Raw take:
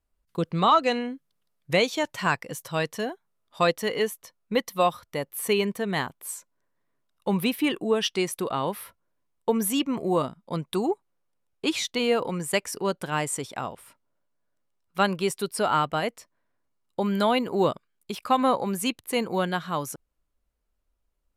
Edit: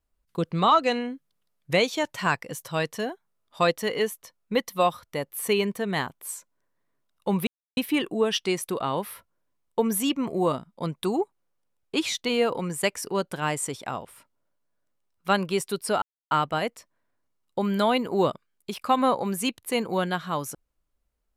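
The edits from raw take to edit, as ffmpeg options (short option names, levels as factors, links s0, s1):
-filter_complex "[0:a]asplit=3[s0][s1][s2];[s0]atrim=end=7.47,asetpts=PTS-STARTPTS,afade=t=out:st=7.466:d=0.004:c=hsin,apad=pad_dur=0.3[s3];[s1]atrim=start=7.47:end=15.72,asetpts=PTS-STARTPTS,afade=t=in:d=0.004:c=hsin,afade=t=out:st=8.246:d=0.004:c=hsin,apad=pad_dur=0.29[s4];[s2]atrim=start=15.72,asetpts=PTS-STARTPTS,afade=t=in:d=0.004:c=hsin[s5];[s3][s4][s5]concat=n=3:v=0:a=1"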